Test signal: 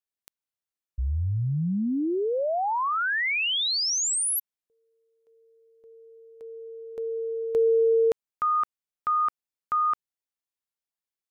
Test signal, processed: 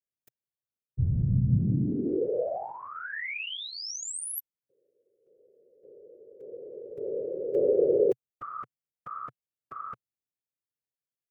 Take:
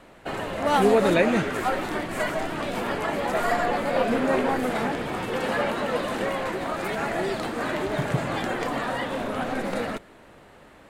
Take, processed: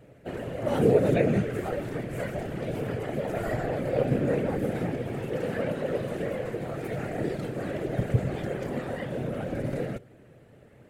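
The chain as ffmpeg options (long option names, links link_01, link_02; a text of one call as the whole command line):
ffmpeg -i in.wav -af "afftfilt=real='hypot(re,im)*cos(2*PI*random(0))':imag='hypot(re,im)*sin(2*PI*random(1))':win_size=512:overlap=0.75,equalizer=frequency=125:width_type=o:width=1:gain=12,equalizer=frequency=500:width_type=o:width=1:gain=7,equalizer=frequency=1000:width_type=o:width=1:gain=-12,equalizer=frequency=4000:width_type=o:width=1:gain=-7,equalizer=frequency=8000:width_type=o:width=1:gain=-3" out.wav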